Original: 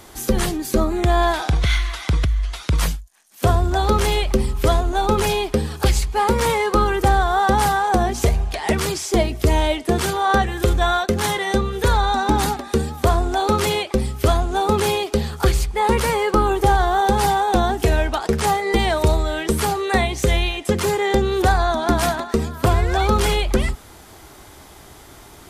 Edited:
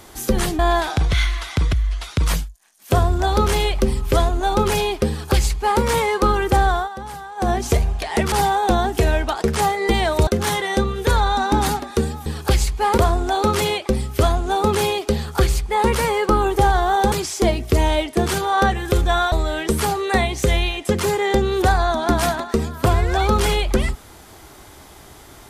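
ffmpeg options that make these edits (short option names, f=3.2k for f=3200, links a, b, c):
-filter_complex "[0:a]asplit=10[a][b][c][d][e][f][g][h][i][j];[a]atrim=end=0.592[k];[b]atrim=start=1.108:end=7.41,asetpts=PTS-STARTPTS,afade=t=out:st=6.172:d=0.13:silence=0.16788[l];[c]atrim=start=7.41:end=7.88,asetpts=PTS-STARTPTS,volume=-15.5dB[m];[d]atrim=start=7.88:end=8.842,asetpts=PTS-STARTPTS,afade=t=in:d=0.13:silence=0.16788[n];[e]atrim=start=17.168:end=19.122[o];[f]atrim=start=11.038:end=13.032[p];[g]atrim=start=5.608:end=6.332[q];[h]atrim=start=13.028:end=17.172[r];[i]atrim=start=8.838:end=11.042[s];[j]atrim=start=19.118[t];[l][m][n]concat=n=3:v=0:a=1[u];[k][u]acrossfade=d=0.004:c1=hsin:c2=hsin[v];[v][o]acrossfade=d=0.004:c1=hsin:c2=hsin[w];[w][p]acrossfade=d=0.004:c1=hsin:c2=hsin[x];[x][q]acrossfade=d=0.004:c1=hsin:c2=hsin[y];[y][r]acrossfade=d=0.004:c1=hsin:c2=hsin[z];[z][s]acrossfade=d=0.004:c1=hsin:c2=hsin[aa];[aa][t]acrossfade=d=0.004:c1=hsin:c2=hsin"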